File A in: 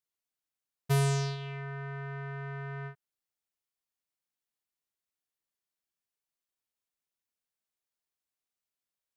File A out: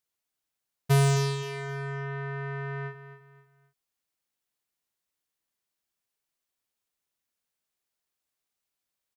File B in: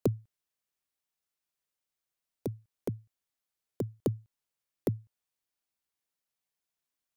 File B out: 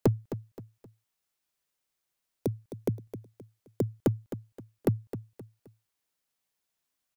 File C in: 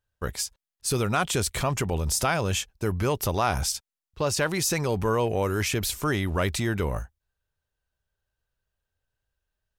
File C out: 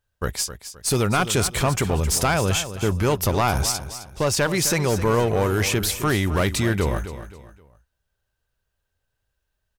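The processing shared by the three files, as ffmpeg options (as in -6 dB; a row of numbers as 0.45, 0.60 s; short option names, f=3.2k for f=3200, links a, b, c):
-filter_complex "[0:a]aeval=exprs='clip(val(0),-1,0.0668)':c=same,asplit=2[a][b];[b]aecho=0:1:262|524|786:0.251|0.0854|0.029[c];[a][c]amix=inputs=2:normalize=0,volume=5dB"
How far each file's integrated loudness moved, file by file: +5.0, +4.0, +4.5 LU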